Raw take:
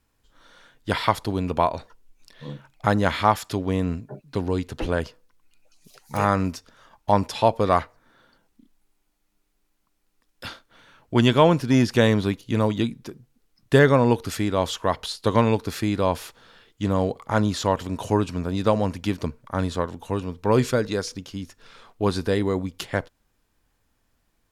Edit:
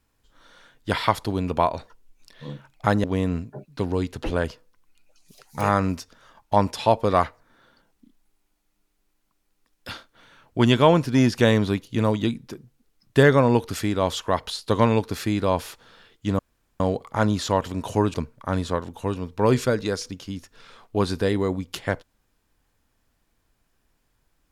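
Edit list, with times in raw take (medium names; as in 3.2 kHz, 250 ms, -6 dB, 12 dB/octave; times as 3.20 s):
3.04–3.60 s: delete
16.95 s: insert room tone 0.41 s
18.29–19.20 s: delete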